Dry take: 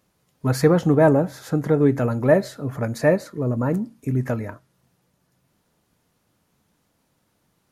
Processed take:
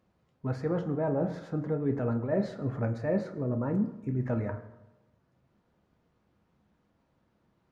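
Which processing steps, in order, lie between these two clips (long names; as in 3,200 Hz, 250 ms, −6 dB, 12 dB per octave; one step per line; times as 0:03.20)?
reversed playback
downward compressor 12 to 1, threshold −23 dBFS, peak gain reduction 13.5 dB
reversed playback
head-to-tape spacing loss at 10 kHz 26 dB
convolution reverb RT60 1.0 s, pre-delay 7 ms, DRR 6.5 dB
level −2 dB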